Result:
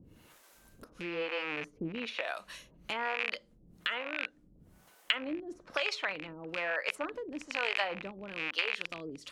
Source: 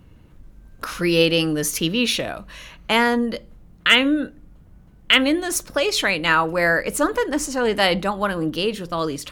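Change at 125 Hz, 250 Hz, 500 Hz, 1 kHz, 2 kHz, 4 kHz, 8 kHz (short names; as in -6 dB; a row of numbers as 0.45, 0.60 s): -21.5, -20.5, -17.0, -16.0, -13.0, -16.0, -26.5 dB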